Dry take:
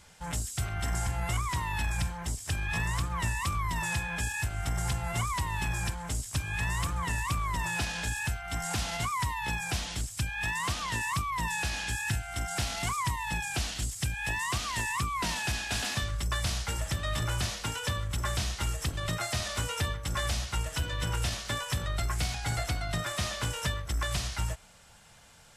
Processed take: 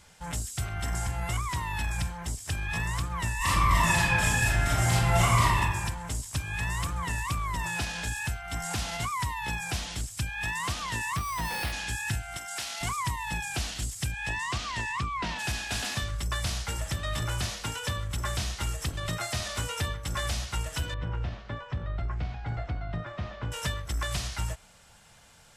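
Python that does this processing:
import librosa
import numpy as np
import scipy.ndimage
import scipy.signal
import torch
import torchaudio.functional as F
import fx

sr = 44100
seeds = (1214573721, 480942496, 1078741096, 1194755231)

y = fx.reverb_throw(x, sr, start_s=3.37, length_s=2.19, rt60_s=1.1, drr_db=-9.0)
y = fx.sample_hold(y, sr, seeds[0], rate_hz=7000.0, jitter_pct=0, at=(11.16, 11.71), fade=0.02)
y = fx.highpass(y, sr, hz=1100.0, slope=6, at=(12.37, 12.81))
y = fx.lowpass(y, sr, hz=fx.line((14.11, 8900.0), (15.38, 3500.0)), slope=12, at=(14.11, 15.38), fade=0.02)
y = fx.spacing_loss(y, sr, db_at_10k=43, at=(20.94, 23.52))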